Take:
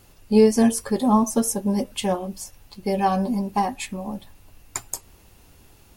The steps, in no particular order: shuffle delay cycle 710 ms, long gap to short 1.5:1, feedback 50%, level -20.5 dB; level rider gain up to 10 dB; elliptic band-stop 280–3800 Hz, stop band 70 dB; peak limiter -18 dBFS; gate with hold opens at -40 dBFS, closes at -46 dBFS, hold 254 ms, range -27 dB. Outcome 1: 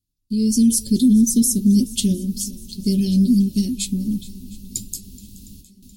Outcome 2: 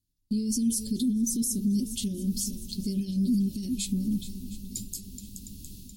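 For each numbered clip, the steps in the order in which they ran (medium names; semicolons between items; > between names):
gate with hold > elliptic band-stop > peak limiter > level rider > shuffle delay; level rider > shuffle delay > peak limiter > elliptic band-stop > gate with hold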